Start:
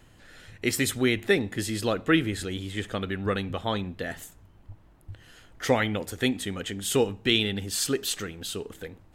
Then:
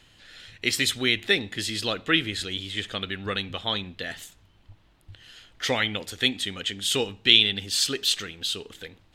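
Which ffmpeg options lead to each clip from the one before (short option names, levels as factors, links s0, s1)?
-af "equalizer=f=3600:w=0.71:g=14.5,volume=0.562"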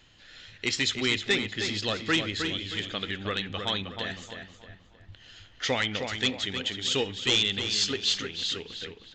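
-filter_complex "[0:a]aresample=16000,asoftclip=type=hard:threshold=0.158,aresample=44100,asplit=2[s0][s1];[s1]adelay=313,lowpass=f=3600:p=1,volume=0.501,asplit=2[s2][s3];[s3]adelay=313,lowpass=f=3600:p=1,volume=0.39,asplit=2[s4][s5];[s5]adelay=313,lowpass=f=3600:p=1,volume=0.39,asplit=2[s6][s7];[s7]adelay=313,lowpass=f=3600:p=1,volume=0.39,asplit=2[s8][s9];[s9]adelay=313,lowpass=f=3600:p=1,volume=0.39[s10];[s0][s2][s4][s6][s8][s10]amix=inputs=6:normalize=0,volume=0.794"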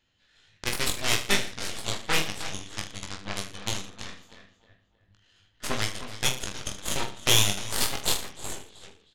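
-af "aeval=exprs='0.251*(cos(1*acos(clip(val(0)/0.251,-1,1)))-cos(1*PI/2))+0.0891*(cos(3*acos(clip(val(0)/0.251,-1,1)))-cos(3*PI/2))+0.0282*(cos(4*acos(clip(val(0)/0.251,-1,1)))-cos(4*PI/2))':c=same,aecho=1:1:20|45|76.25|115.3|164.1:0.631|0.398|0.251|0.158|0.1,volume=2.66"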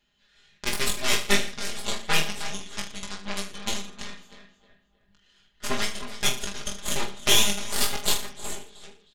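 -af "aecho=1:1:4.9:0.84,volume=0.891"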